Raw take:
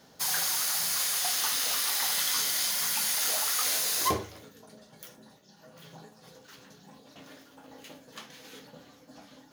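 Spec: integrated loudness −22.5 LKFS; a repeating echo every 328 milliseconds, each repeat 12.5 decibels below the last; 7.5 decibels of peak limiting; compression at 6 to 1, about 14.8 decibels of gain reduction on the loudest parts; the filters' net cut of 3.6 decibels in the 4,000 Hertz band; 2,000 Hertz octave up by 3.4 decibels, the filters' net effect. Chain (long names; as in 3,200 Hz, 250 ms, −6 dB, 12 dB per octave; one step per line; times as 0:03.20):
parametric band 2,000 Hz +5.5 dB
parametric band 4,000 Hz −6 dB
downward compressor 6 to 1, threshold −38 dBFS
brickwall limiter −33 dBFS
repeating echo 328 ms, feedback 24%, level −12.5 dB
level +20.5 dB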